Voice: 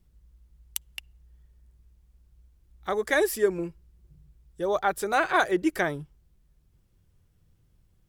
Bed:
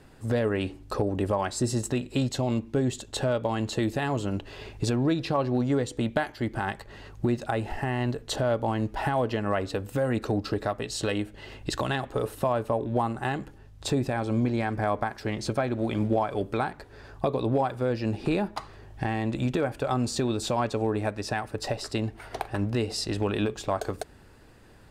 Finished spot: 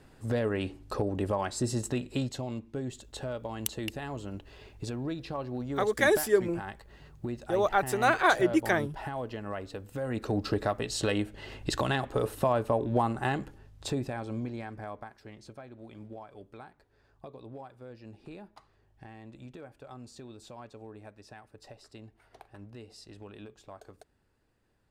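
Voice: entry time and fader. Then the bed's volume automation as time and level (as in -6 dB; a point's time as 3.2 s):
2.90 s, -0.5 dB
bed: 2.11 s -3.5 dB
2.51 s -10 dB
9.89 s -10 dB
10.47 s -0.5 dB
13.37 s -0.5 dB
15.54 s -20 dB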